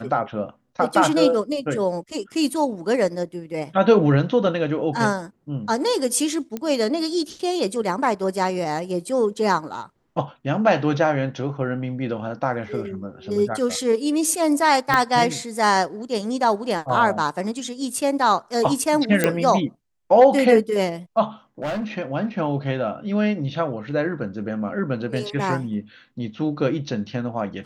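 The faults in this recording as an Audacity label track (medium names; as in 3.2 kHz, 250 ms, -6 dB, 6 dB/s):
6.570000	6.570000	pop -15 dBFS
14.940000	14.940000	pop -5 dBFS
19.240000	19.240000	pop -4 dBFS
21.620000	21.850000	clipped -23 dBFS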